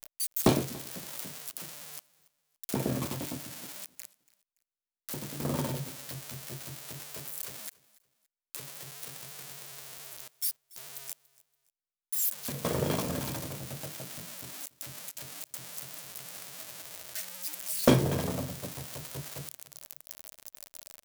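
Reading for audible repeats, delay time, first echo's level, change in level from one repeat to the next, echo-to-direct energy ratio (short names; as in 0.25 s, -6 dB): 2, 0.285 s, -22.5 dB, -10.0 dB, -22.0 dB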